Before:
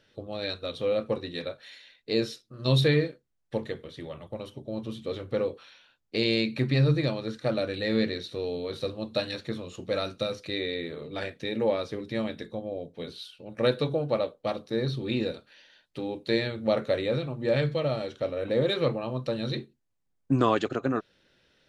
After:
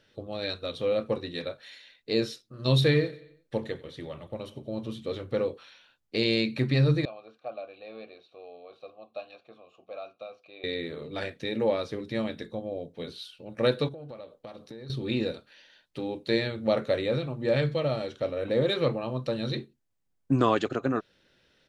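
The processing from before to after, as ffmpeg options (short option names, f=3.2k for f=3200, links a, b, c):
-filter_complex "[0:a]asplit=3[a][b][c];[a]afade=t=out:st=2.84:d=0.02[d];[b]aecho=1:1:90|180|270|360:0.1|0.052|0.027|0.0141,afade=t=in:st=2.84:d=0.02,afade=t=out:st=4.86:d=0.02[e];[c]afade=t=in:st=4.86:d=0.02[f];[d][e][f]amix=inputs=3:normalize=0,asettb=1/sr,asplit=3[g][h][i];[g]atrim=end=7.054[j];[h]atrim=start=7.05:end=10.64,asetpts=PTS-STARTPTS,afade=t=in:d=0.004:c=qsin,afade=t=out:st=3.586:d=0.004:c=qsin,asplit=3[k][l][m];[k]bandpass=f=730:t=q:w=8,volume=0dB[n];[l]bandpass=f=1.09k:t=q:w=8,volume=-6dB[o];[m]bandpass=f=2.44k:t=q:w=8,volume=-9dB[p];[n][o][p]amix=inputs=3:normalize=0[q];[i]atrim=start=10.636[r];[j][q]acrossfade=d=0.004:c1=hsin:c2=qsin[s];[s][r]acrossfade=d=0.004:c1=qsin:c2=hsin,asettb=1/sr,asplit=3[t][u][v];[t]atrim=end=13.884[w];[u]atrim=start=13.88:end=14.9,asetpts=PTS-STARTPTS,afade=t=in:d=0.004:c=qsin,afade=t=out:st=1.016:d=0.004:c=qsin,acompressor=threshold=-39dB:ratio=10:attack=3.2:release=140:knee=1:detection=peak[x];[v]atrim=start=14.896[y];[w][x]acrossfade=d=0.004:c1=hsin:c2=qsin[z];[z][y]acrossfade=d=0.004:c1=qsin:c2=hsin"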